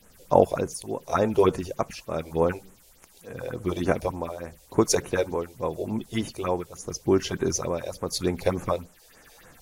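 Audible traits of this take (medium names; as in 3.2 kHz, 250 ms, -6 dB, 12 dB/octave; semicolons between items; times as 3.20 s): tremolo triangle 0.86 Hz, depth 85%; a quantiser's noise floor 10-bit, dither triangular; phasing stages 4, 3.4 Hz, lowest notch 190–4700 Hz; AAC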